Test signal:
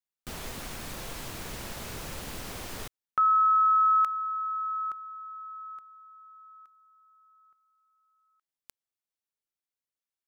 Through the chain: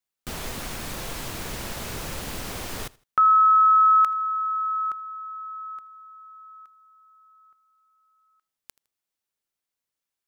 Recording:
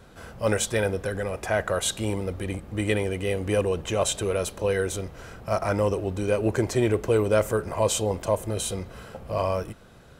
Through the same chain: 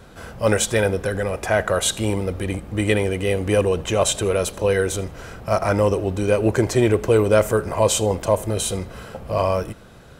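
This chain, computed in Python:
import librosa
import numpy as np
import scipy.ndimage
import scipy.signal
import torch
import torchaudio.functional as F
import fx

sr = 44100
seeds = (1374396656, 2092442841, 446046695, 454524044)

y = fx.echo_feedback(x, sr, ms=80, feedback_pct=29, wet_db=-23.0)
y = y * 10.0 ** (5.5 / 20.0)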